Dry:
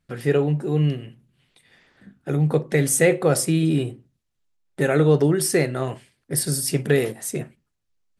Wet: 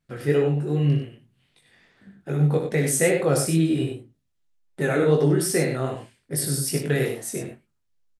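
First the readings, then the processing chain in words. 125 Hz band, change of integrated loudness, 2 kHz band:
−1.0 dB, −1.5 dB, −2.0 dB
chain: chorus effect 2.5 Hz, delay 18.5 ms, depth 4.8 ms
on a send: loudspeakers that aren't time-aligned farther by 21 metres −9 dB, 33 metres −7 dB

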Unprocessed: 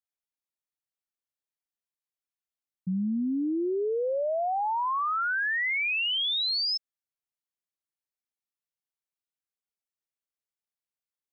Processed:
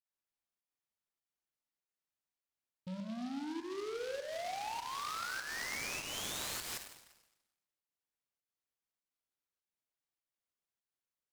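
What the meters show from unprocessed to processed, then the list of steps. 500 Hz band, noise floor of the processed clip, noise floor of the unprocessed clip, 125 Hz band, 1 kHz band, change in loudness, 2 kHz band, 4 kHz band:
−13.0 dB, below −85 dBFS, below −85 dBFS, −11.0 dB, −12.5 dB, −13.0 dB, −14.0 dB, −15.0 dB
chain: soft clipping −37.5 dBFS, distortion −10 dB
fake sidechain pumping 100 BPM, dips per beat 1, −13 dB, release 181 ms
four-comb reverb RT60 1 s, combs from 33 ms, DRR 5 dB
short delay modulated by noise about 3,100 Hz, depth 0.057 ms
level −3 dB

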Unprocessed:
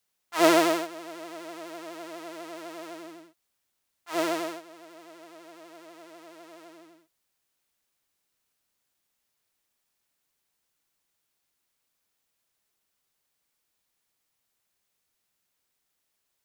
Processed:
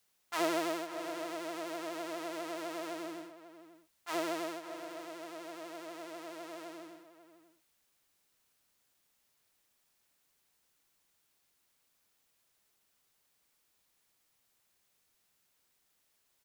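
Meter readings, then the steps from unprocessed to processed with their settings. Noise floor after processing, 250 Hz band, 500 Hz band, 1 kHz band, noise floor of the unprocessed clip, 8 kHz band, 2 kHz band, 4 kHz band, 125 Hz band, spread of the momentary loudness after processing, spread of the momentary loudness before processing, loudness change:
−76 dBFS, −8.5 dB, −8.5 dB, −8.0 dB, −79 dBFS, −8.0 dB, −8.0 dB, −8.0 dB, −9.0 dB, 16 LU, 22 LU, −11.0 dB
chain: downward compressor 2.5 to 1, threshold −40 dBFS, peak gain reduction 17 dB
slap from a distant wall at 93 metres, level −13 dB
level +3 dB

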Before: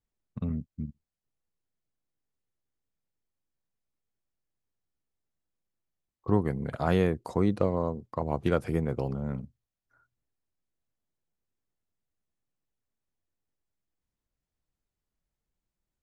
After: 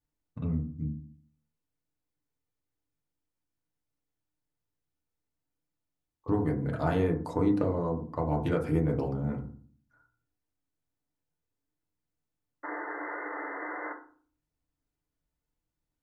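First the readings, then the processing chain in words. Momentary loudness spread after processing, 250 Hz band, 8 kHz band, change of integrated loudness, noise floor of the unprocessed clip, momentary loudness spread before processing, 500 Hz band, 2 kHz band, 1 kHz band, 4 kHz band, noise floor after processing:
13 LU, +0.5 dB, can't be measured, −1.5 dB, below −85 dBFS, 14 LU, −1.5 dB, +4.0 dB, +1.0 dB, −5.0 dB, below −85 dBFS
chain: sound drawn into the spectrogram noise, 0:12.63–0:13.93, 280–2,100 Hz −38 dBFS
downward compressor, threshold −23 dBFS, peak gain reduction 6 dB
feedback delay network reverb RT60 0.46 s, low-frequency decay 1.45×, high-frequency decay 0.3×, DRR 0 dB
level −3 dB

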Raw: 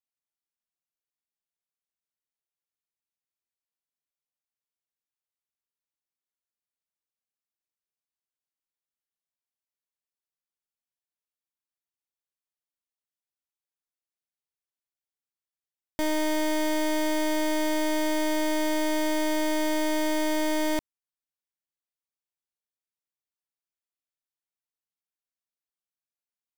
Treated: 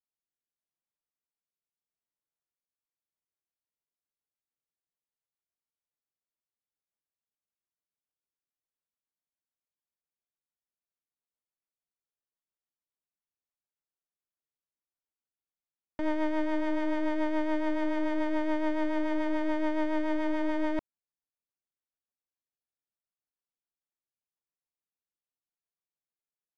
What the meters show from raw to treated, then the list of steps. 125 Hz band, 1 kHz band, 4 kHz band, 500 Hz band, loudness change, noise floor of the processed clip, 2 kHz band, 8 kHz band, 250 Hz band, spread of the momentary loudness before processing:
can't be measured, −4.5 dB, −15.0 dB, −4.5 dB, −4.0 dB, below −85 dBFS, −6.0 dB, below −25 dB, −2.0 dB, 1 LU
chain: spectral envelope flattened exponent 0.6
rotating-speaker cabinet horn 0.8 Hz, later 7 Hz, at 0:02.55
low-pass filter 1,400 Hz 12 dB per octave

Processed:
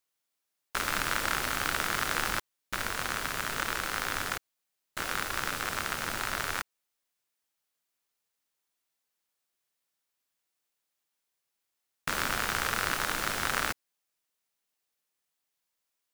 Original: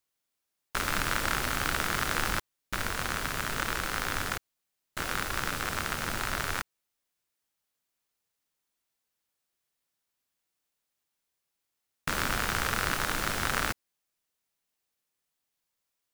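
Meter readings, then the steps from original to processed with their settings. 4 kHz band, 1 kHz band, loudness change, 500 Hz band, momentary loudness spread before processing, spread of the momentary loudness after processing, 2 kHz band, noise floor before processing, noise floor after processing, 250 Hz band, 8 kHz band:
0.0 dB, −0.5 dB, −0.5 dB, −1.5 dB, 8 LU, 8 LU, 0.0 dB, −84 dBFS, −84 dBFS, −3.5 dB, 0.0 dB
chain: low-shelf EQ 240 Hz −7 dB

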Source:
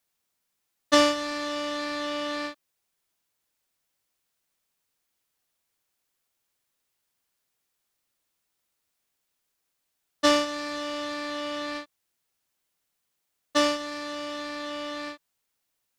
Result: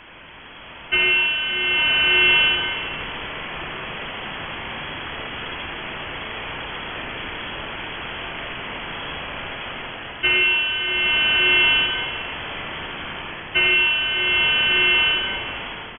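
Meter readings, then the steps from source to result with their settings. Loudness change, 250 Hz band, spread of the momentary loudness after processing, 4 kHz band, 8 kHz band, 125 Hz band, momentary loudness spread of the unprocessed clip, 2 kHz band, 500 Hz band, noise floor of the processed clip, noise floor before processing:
+8.0 dB, −2.0 dB, 15 LU, +15.0 dB, below −40 dB, +21.0 dB, 13 LU, +18.0 dB, −2.0 dB, −40 dBFS, −79 dBFS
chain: converter with a step at zero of −26 dBFS
automatic gain control gain up to 12 dB
single-tap delay 84 ms −9 dB
four-comb reverb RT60 1.4 s, combs from 29 ms, DRR 2.5 dB
voice inversion scrambler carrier 3,300 Hz
level −5 dB

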